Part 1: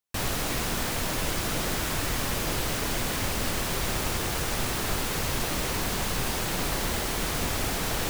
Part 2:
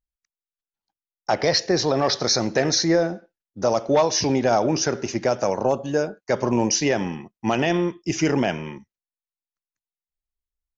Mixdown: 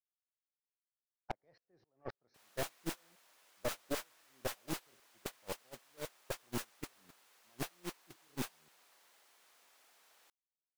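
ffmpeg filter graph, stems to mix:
ffmpeg -i stem1.wav -i stem2.wav -filter_complex "[0:a]highpass=710,adelay=2200,volume=-4.5dB[link_01];[1:a]lowpass=1900,aeval=exprs='val(0)*pow(10,-35*if(lt(mod(-3.8*n/s,1),2*abs(-3.8)/1000),1-mod(-3.8*n/s,1)/(2*abs(-3.8)/1000),(mod(-3.8*n/s,1)-2*abs(-3.8)/1000)/(1-2*abs(-3.8)/1000))/20)':channel_layout=same,volume=-5.5dB[link_02];[link_01][link_02]amix=inputs=2:normalize=0,agate=range=-27dB:threshold=-29dB:ratio=16:detection=peak,aeval=exprs='(tanh(35.5*val(0)+0.75)-tanh(0.75))/35.5':channel_layout=same" out.wav

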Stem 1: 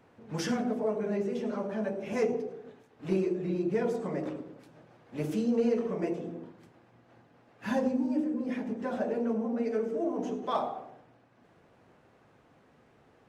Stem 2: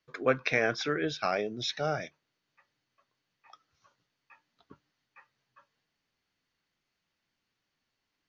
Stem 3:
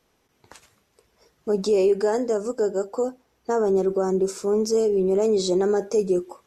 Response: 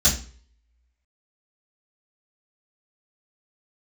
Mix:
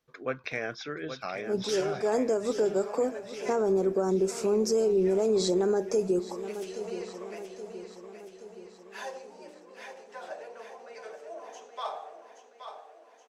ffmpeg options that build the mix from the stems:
-filter_complex "[0:a]highpass=frequency=590:width=0.5412,highpass=frequency=590:width=1.3066,equalizer=frequency=6200:width_type=o:width=2.3:gain=7.5,adelay=1300,volume=-5dB,asplit=2[link_01][link_02];[link_02]volume=-8.5dB[link_03];[1:a]volume=-6.5dB,asplit=3[link_04][link_05][link_06];[link_05]volume=-9dB[link_07];[2:a]agate=range=-16dB:threshold=-59dB:ratio=16:detection=peak,volume=1dB,asplit=2[link_08][link_09];[link_09]volume=-18dB[link_10];[link_06]apad=whole_len=285144[link_11];[link_08][link_11]sidechaincompress=threshold=-47dB:ratio=8:attack=6.4:release=185[link_12];[link_03][link_07][link_10]amix=inputs=3:normalize=0,aecho=0:1:824|1648|2472|3296|4120|4944|5768|6592:1|0.55|0.303|0.166|0.0915|0.0503|0.0277|0.0152[link_13];[link_01][link_04][link_12][link_13]amix=inputs=4:normalize=0,alimiter=limit=-17.5dB:level=0:latency=1:release=328"

